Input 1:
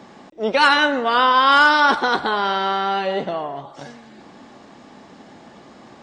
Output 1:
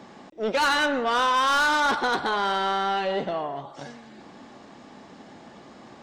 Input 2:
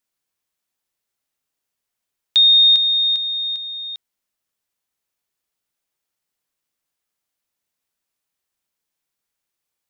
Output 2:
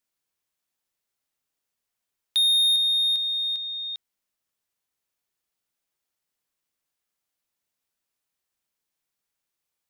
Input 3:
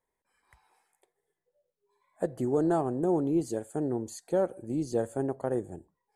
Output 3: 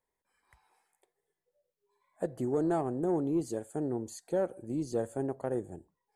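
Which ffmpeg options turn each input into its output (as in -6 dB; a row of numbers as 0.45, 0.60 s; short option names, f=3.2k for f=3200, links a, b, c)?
-af "asoftclip=type=tanh:threshold=-15.5dB,volume=-2.5dB"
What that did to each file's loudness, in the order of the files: -6.5, -7.5, -3.0 LU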